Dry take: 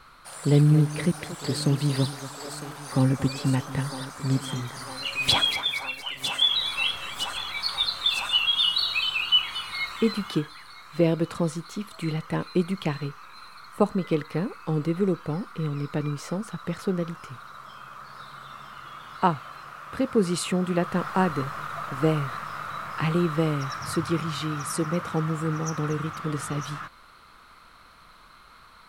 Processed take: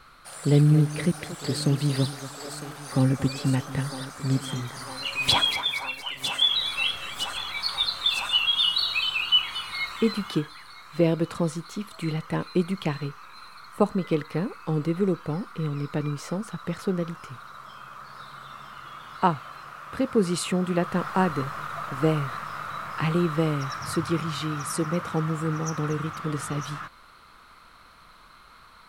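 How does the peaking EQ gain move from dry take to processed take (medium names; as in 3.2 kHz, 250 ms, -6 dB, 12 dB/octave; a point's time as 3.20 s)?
peaking EQ 970 Hz 0.24 oct
4.44 s -5 dB
5.22 s +4.5 dB
5.93 s +4.5 dB
6.96 s -6.5 dB
7.46 s +0.5 dB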